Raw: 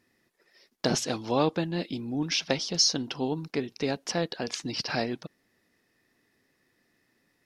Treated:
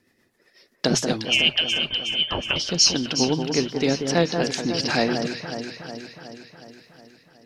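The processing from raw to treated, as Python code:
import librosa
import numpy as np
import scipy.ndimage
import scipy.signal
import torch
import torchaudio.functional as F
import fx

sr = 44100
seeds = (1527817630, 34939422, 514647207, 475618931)

p1 = fx.hum_notches(x, sr, base_hz=60, count=2)
p2 = fx.freq_invert(p1, sr, carrier_hz=3300, at=(1.25, 2.56))
p3 = fx.rider(p2, sr, range_db=10, speed_s=2.0)
p4 = p2 + (p3 * librosa.db_to_amplitude(2.5))
p5 = fx.rotary_switch(p4, sr, hz=8.0, then_hz=1.1, switch_at_s=3.73)
y = p5 + fx.echo_alternate(p5, sr, ms=183, hz=1700.0, feedback_pct=77, wet_db=-6, dry=0)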